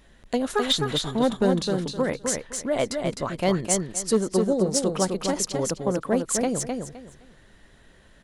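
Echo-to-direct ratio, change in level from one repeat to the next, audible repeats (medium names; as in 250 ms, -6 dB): -4.5 dB, -13.0 dB, 3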